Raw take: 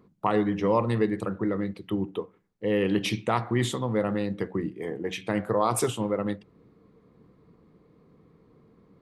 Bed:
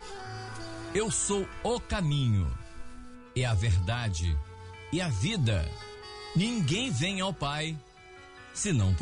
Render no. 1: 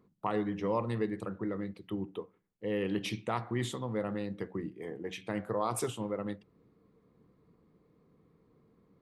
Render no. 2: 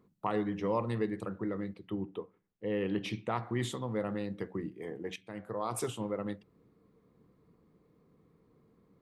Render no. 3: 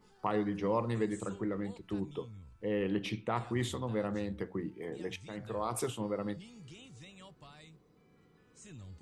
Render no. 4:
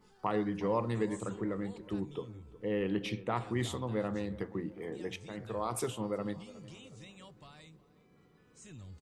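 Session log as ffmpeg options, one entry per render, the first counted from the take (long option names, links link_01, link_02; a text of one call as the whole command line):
ffmpeg -i in.wav -af "volume=-8dB" out.wav
ffmpeg -i in.wav -filter_complex "[0:a]asettb=1/sr,asplit=3[link_01][link_02][link_03];[link_01]atrim=end=1.744[link_04];[link_02]atrim=start=1.74:end=3.43,asetpts=PTS-STARTPTS,afade=type=in:duration=0.004:curve=qsin,afade=type=out:start_time=1.686:duration=0.004:curve=qsin,lowpass=frequency=3400:poles=1[link_05];[link_03]atrim=start=3.426[link_06];[link_04][link_05]acrossfade=duration=0.004:curve1=hsin:curve2=qsin[link_07];[link_07][link_06]acrossfade=duration=0.004:curve1=qsin:curve2=hsin,asplit=2[link_08][link_09];[link_08]atrim=end=5.16,asetpts=PTS-STARTPTS,afade=type=out:start_time=5.156:duration=0.004:curve=hsin:silence=0.211349[link_10];[link_09]atrim=start=5.16,asetpts=PTS-STARTPTS,afade=type=in:duration=0.8:silence=0.211349[link_11];[link_10][link_11]concat=n=2:v=0:a=1" out.wav
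ffmpeg -i in.wav -i bed.wav -filter_complex "[1:a]volume=-23.5dB[link_01];[0:a][link_01]amix=inputs=2:normalize=0" out.wav
ffmpeg -i in.wav -filter_complex "[0:a]asplit=2[link_01][link_02];[link_02]adelay=364,lowpass=frequency=1700:poles=1,volume=-17.5dB,asplit=2[link_03][link_04];[link_04]adelay=364,lowpass=frequency=1700:poles=1,volume=0.51,asplit=2[link_05][link_06];[link_06]adelay=364,lowpass=frequency=1700:poles=1,volume=0.51,asplit=2[link_07][link_08];[link_08]adelay=364,lowpass=frequency=1700:poles=1,volume=0.51[link_09];[link_01][link_03][link_05][link_07][link_09]amix=inputs=5:normalize=0" out.wav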